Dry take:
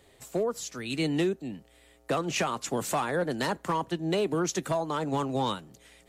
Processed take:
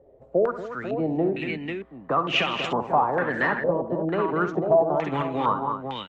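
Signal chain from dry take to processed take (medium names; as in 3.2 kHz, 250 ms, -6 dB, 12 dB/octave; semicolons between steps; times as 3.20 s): multi-tap echo 65/155/233/494 ms -11/-15/-9/-6.5 dB; step-sequenced low-pass 2.2 Hz 560–2900 Hz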